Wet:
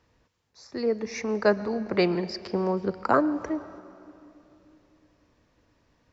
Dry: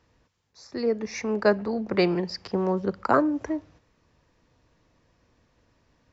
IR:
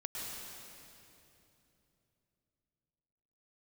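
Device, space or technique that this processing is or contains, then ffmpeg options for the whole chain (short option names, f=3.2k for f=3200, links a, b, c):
filtered reverb send: -filter_complex "[0:a]asplit=2[a][b];[b]highpass=210,lowpass=6.7k[c];[1:a]atrim=start_sample=2205[d];[c][d]afir=irnorm=-1:irlink=0,volume=-15dB[e];[a][e]amix=inputs=2:normalize=0,volume=-1.5dB"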